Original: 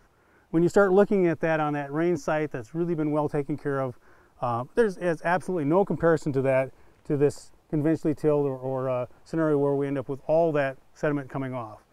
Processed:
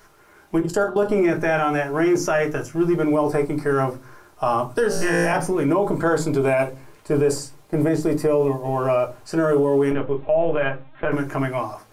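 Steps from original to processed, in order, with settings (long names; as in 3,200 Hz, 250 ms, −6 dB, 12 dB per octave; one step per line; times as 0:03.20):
0:00.60–0:01.09: output level in coarse steps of 19 dB
0:09.91–0:11.12: linear-prediction vocoder at 8 kHz pitch kept
spectral tilt +2 dB per octave
0:04.88–0:05.33: flutter between parallel walls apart 3 metres, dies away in 1.3 s
convolution reverb RT60 0.25 s, pre-delay 3 ms, DRR 2 dB
brickwall limiter −18 dBFS, peak gain reduction 10.5 dB
level +7 dB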